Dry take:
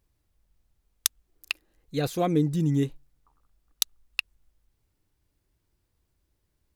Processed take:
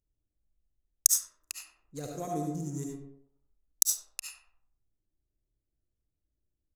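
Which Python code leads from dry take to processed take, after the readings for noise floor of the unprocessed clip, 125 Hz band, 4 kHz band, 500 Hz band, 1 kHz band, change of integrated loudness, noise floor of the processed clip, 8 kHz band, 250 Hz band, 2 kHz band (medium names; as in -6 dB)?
-76 dBFS, -12.0 dB, -6.5 dB, -10.0 dB, -6.0 dB, 0.0 dB, -85 dBFS, +7.5 dB, -11.0 dB, -15.0 dB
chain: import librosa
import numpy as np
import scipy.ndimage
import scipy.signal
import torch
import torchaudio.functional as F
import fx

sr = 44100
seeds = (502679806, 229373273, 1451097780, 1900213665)

p1 = fx.wiener(x, sr, points=41)
p2 = fx.high_shelf_res(p1, sr, hz=4800.0, db=13.5, q=3.0)
p3 = p2 + fx.echo_banded(p2, sr, ms=95, feedback_pct=41, hz=650.0, wet_db=-6, dry=0)
p4 = fx.rev_freeverb(p3, sr, rt60_s=0.55, hf_ratio=0.55, predelay_ms=30, drr_db=0.5)
y = p4 * 10.0 ** (-12.5 / 20.0)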